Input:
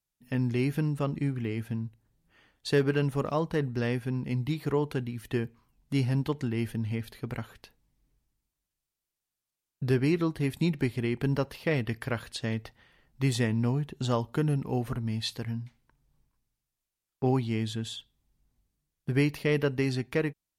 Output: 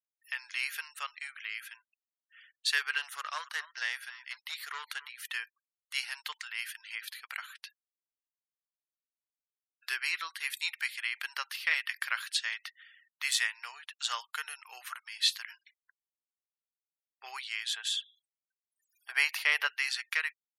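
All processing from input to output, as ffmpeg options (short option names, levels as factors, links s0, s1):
-filter_complex "[0:a]asettb=1/sr,asplit=3[s0][s1][s2];[s0]atrim=end=2.984[s3];[s1]atrim=start=2.98:end=5.09,asetpts=PTS-STARTPTS,afade=t=in:d=0.004:c=qsin,afade=t=out:st=2.106:d=0.004:c=qsin,aeval=exprs='clip(val(0),-1,0.0562)':c=same,equalizer=f=2500:w=5.6:g=-5.5,aecho=1:1:270:0.158,atrim=end_sample=93051[s4];[s2]atrim=start=5.086[s5];[s3][s4]acrossfade=d=0.004:c1=hsin:c2=qsin[s6];[s6][s5]acrossfade=d=0.004:c1=qsin:c2=hsin,asettb=1/sr,asplit=3[s7][s8][s9];[s7]atrim=end=17.684[s10];[s8]atrim=start=17.68:end=19.67,asetpts=PTS-STARTPTS,afade=t=in:d=0.004:c=qsin,afade=t=out:st=1.986:d=0.004:c=qsin,equalizer=f=690:w=1.2:g=13,acompressor=mode=upward:threshold=0.00891:ratio=2.5:attack=3.2:release=140:knee=2.83:detection=peak[s11];[s9]atrim=start=19.666[s12];[s10][s11]acrossfade=d=0.004:c1=hsin:c2=qsin[s13];[s13][s12]acrossfade=d=0.004:c1=qsin:c2=hsin,highpass=f=1400:w=0.5412,highpass=f=1400:w=1.3066,afftfilt=real='re*gte(hypot(re,im),0.000891)':imag='im*gte(hypot(re,im),0.000891)':win_size=1024:overlap=0.75,volume=2.24"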